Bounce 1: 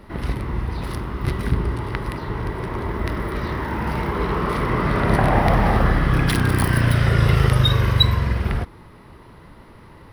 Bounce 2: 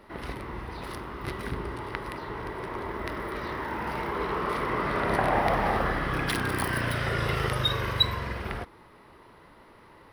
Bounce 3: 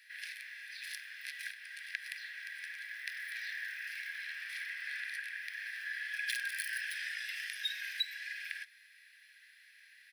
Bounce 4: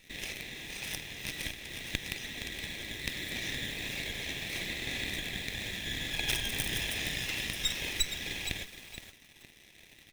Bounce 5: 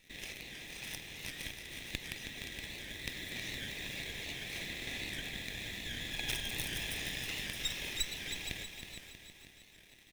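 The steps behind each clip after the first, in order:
tone controls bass -11 dB, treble -2 dB; gain -4.5 dB
comb 1.2 ms, depth 37%; compressor 6:1, threshold -31 dBFS, peak gain reduction 12 dB; rippled Chebyshev high-pass 1600 Hz, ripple 3 dB; gain +3.5 dB
minimum comb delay 0.33 ms; in parallel at -4 dB: companded quantiser 4-bit; on the sum: lo-fi delay 0.468 s, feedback 35%, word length 8-bit, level -9 dB; gain +3 dB
feedback echo 0.319 s, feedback 54%, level -8.5 dB; record warp 78 rpm, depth 100 cents; gain -5.5 dB

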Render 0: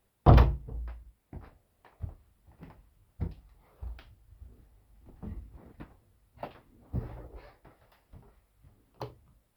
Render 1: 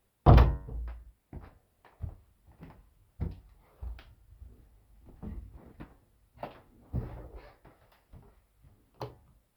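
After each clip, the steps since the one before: de-hum 93.44 Hz, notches 21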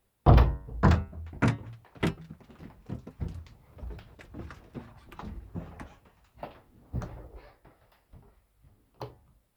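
echoes that change speed 0.645 s, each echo +6 st, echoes 3

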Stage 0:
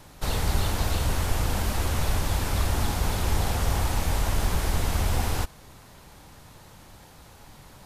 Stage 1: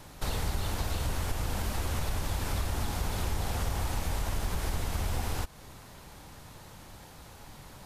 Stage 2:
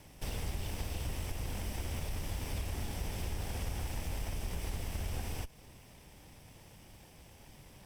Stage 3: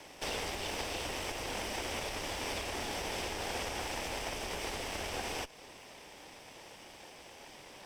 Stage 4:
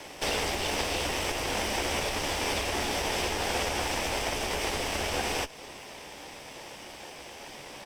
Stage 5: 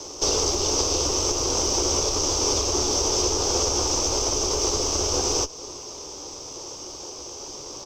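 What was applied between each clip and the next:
compressor 3:1, threshold -29 dBFS, peak gain reduction 9 dB
minimum comb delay 0.36 ms; gain -5.5 dB
three-band isolator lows -20 dB, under 300 Hz, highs -13 dB, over 7700 Hz; gain +9 dB
doubler 14 ms -10.5 dB; gain +7.5 dB
EQ curve 120 Hz 0 dB, 180 Hz -11 dB, 380 Hz +4 dB, 710 Hz -8 dB, 1200 Hz -1 dB, 1800 Hz -22 dB, 3700 Hz -6 dB, 6300 Hz +12 dB, 9500 Hz -19 dB, 14000 Hz -11 dB; gain +7 dB

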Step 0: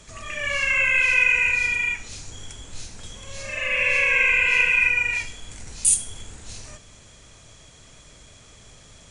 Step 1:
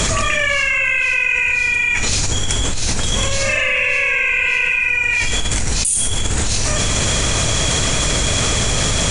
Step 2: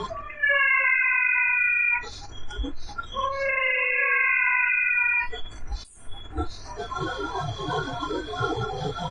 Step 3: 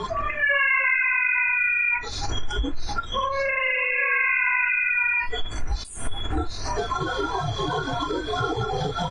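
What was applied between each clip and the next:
fast leveller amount 100%; gain -1.5 dB
spectral noise reduction 23 dB; synth low-pass 1400 Hz, resonance Q 1.6; comb 2.9 ms, depth 42%
recorder AGC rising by 47 dB/s

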